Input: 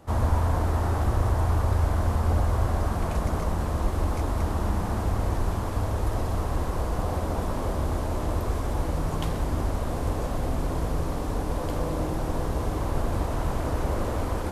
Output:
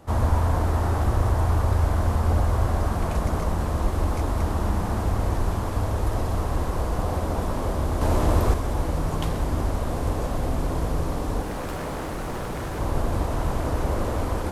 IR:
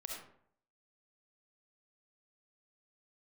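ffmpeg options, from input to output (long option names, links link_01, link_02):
-filter_complex "[0:a]asettb=1/sr,asplit=3[link_01][link_02][link_03];[link_01]atrim=end=8.014[link_04];[link_02]atrim=start=8.01:end=8.54,asetpts=PTS-STARTPTS,afade=type=in:duration=0.004:curve=qsin,afade=type=out:start_time=0.526:duration=0.004:curve=qsin,acontrast=29[link_05];[link_03]atrim=start=8.536[link_06];[link_04][link_05]acrossfade=duration=0.004:curve1=hsin:curve2=qsin[link_07];[link_07][link_06]acrossfade=duration=0.004:curve1=qsin:curve2=hsin,asettb=1/sr,asplit=3[link_08][link_09][link_10];[link_08]atrim=end=11.424[link_11];[link_09]atrim=start=11.42:end=12.79,asetpts=PTS-STARTPTS,afade=type=in:duration=0.004:curve=qsin,afade=type=out:start_time=1.366:duration=0.004:curve=qsin,aeval=exprs='0.0447*(abs(mod(val(0)/0.0447+3,4)-2)-1)':channel_layout=same[link_12];[link_10]atrim=start=12.786[link_13];[link_11][link_12]acrossfade=duration=0.004:curve1=hsin:curve2=qsin[link_14];[link_14][link_13]acrossfade=duration=0.004:curve1=qsin:curve2=hsin,volume=2dB"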